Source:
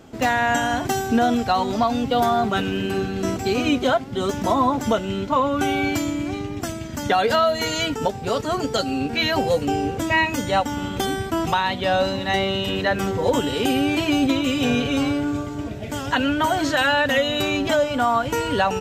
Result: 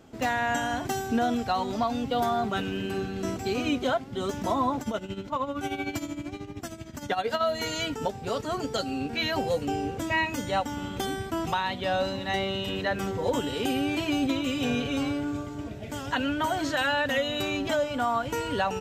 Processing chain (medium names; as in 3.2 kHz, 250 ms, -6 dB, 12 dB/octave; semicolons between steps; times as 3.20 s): 4.81–7.41 s: tremolo 13 Hz, depth 72%; trim -7 dB